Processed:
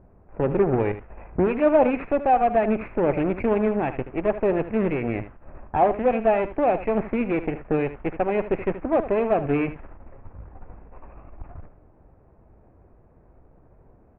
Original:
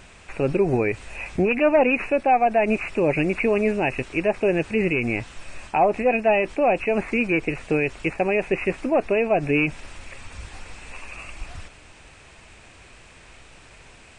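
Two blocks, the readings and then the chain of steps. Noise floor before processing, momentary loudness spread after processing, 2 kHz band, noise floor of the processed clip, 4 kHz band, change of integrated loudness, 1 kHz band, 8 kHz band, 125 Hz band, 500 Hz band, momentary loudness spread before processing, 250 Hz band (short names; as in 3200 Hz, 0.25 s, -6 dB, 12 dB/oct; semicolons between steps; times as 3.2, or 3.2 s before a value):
-49 dBFS, 8 LU, -9.0 dB, -55 dBFS, under -10 dB, -1.5 dB, -0.5 dB, n/a, -0.5 dB, -1.0 dB, 21 LU, -0.5 dB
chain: low-pass opened by the level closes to 620 Hz, open at -15 dBFS; added harmonics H 3 -18 dB, 8 -20 dB, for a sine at -9.5 dBFS; Gaussian blur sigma 4.8 samples; on a send: echo 77 ms -13 dB; on the sum: gain +2 dB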